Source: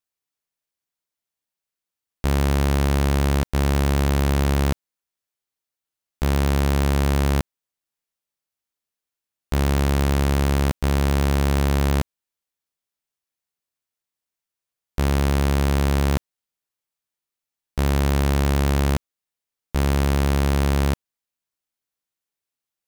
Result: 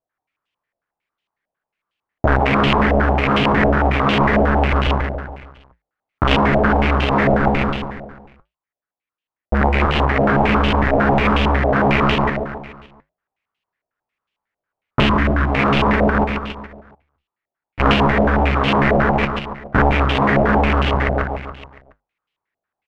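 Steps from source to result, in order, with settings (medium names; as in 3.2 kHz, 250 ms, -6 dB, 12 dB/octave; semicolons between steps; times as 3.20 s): in parallel at -4 dB: fuzz box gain 50 dB, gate -47 dBFS; 7.34–9.86 s: on the sum: waveshaping leveller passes 5; flange 1.3 Hz, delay 5.9 ms, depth 6.6 ms, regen -72%; integer overflow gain 17 dB; 15.06–15.52 s: time-frequency box 370–950 Hz -10 dB; 15.96–17.80 s: valve stage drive 42 dB, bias 0.65; feedback delay 141 ms, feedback 51%, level -4 dB; loudness maximiser +21 dB; step-sequenced low-pass 11 Hz 660–2900 Hz; trim -10.5 dB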